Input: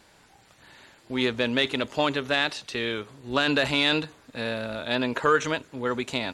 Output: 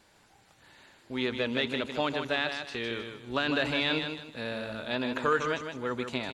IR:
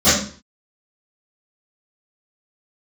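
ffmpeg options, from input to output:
-filter_complex "[0:a]aecho=1:1:155|310|465|620:0.447|0.13|0.0376|0.0109,acrossover=split=4700[link_01][link_02];[link_02]acompressor=threshold=-45dB:ratio=4:attack=1:release=60[link_03];[link_01][link_03]amix=inputs=2:normalize=0,volume=-5.5dB"

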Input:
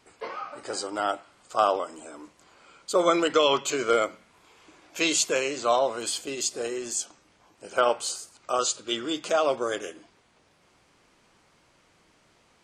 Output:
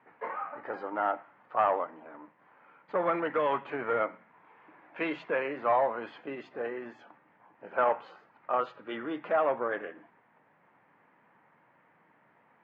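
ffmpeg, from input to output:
ffmpeg -i in.wav -filter_complex "[0:a]asettb=1/sr,asplit=3[link_01][link_02][link_03];[link_01]atrim=end=1.854[link_04];[link_02]atrim=start=1.85:end=4,asetpts=PTS-STARTPTS,afade=type=in:duration=0.004:curve=qsin,afade=type=out:start_time=2.146:duration=0.004:curve=qsin,aeval=exprs='if(lt(val(0),0),0.447*val(0),val(0))':channel_layout=same[link_05];[link_03]atrim=start=3.996[link_06];[link_04][link_05]acrossfade=duration=0.004:curve1=hsin:curve2=qsin[link_07];[link_07][link_06]acrossfade=duration=0.004:curve1=qsin:curve2=hsin,aemphasis=mode=reproduction:type=50fm,asoftclip=type=tanh:threshold=-16.5dB,highpass=frequency=130:width=0.5412,highpass=frequency=130:width=1.3066,equalizer=frequency=370:width_type=q:width=4:gain=-5,equalizer=frequency=900:width_type=q:width=4:gain=7,equalizer=frequency=1800:width_type=q:width=4:gain=7,lowpass=frequency=2200:width=0.5412,lowpass=frequency=2200:width=1.3066,volume=-2.5dB" out.wav

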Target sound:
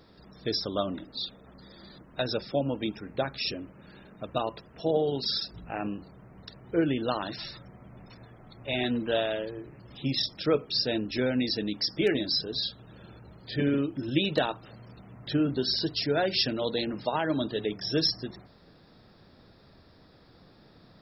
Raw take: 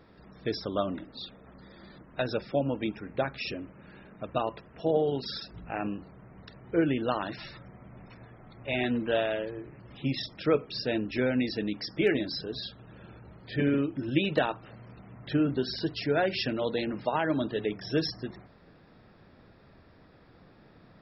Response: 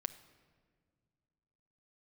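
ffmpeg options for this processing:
-af "highshelf=frequency=3200:width_type=q:width=1.5:gain=7"

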